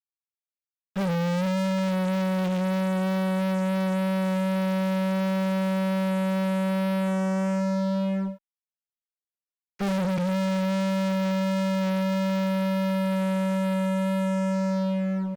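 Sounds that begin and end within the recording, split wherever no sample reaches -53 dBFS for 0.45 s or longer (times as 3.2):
0.96–8.38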